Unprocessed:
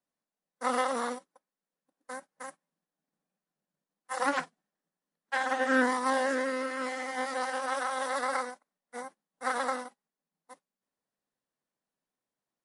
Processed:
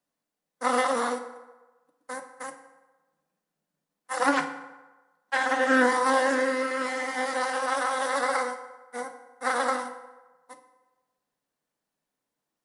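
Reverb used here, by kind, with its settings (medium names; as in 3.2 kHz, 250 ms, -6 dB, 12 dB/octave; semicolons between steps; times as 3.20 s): FDN reverb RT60 1.2 s, low-frequency decay 0.75×, high-frequency decay 0.6×, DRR 7 dB; trim +4.5 dB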